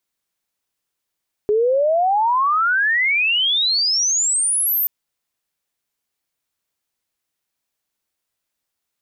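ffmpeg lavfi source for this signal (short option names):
-f lavfi -i "aevalsrc='pow(10,(-13.5-2.5*t/3.38)/20)*sin(2*PI*410*3.38/log(14000/410)*(exp(log(14000/410)*t/3.38)-1))':d=3.38:s=44100"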